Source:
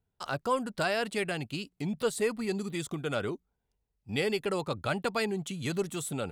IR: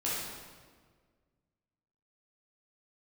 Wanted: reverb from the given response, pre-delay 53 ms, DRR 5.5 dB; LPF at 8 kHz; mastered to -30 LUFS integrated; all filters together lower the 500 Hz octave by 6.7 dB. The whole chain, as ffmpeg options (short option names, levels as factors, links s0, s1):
-filter_complex "[0:a]lowpass=8000,equalizer=f=500:t=o:g=-8.5,asplit=2[s0][s1];[1:a]atrim=start_sample=2205,adelay=53[s2];[s1][s2]afir=irnorm=-1:irlink=0,volume=0.251[s3];[s0][s3]amix=inputs=2:normalize=0,volume=1.58"